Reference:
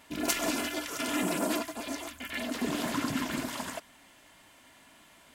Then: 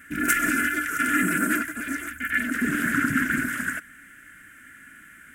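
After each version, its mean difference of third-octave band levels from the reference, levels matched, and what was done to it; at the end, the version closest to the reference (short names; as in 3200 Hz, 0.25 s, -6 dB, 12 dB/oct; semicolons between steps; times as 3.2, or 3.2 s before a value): 7.0 dB: EQ curve 280 Hz 0 dB, 930 Hz -26 dB, 1500 Hz +14 dB, 4200 Hz -20 dB, 8400 Hz 0 dB; gain +7 dB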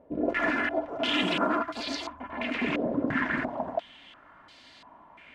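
10.0 dB: stepped low-pass 2.9 Hz 530–4400 Hz; gain +1.5 dB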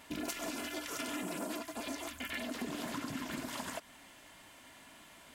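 4.5 dB: compressor 6:1, threshold -38 dBFS, peak gain reduction 14 dB; gain +1 dB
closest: third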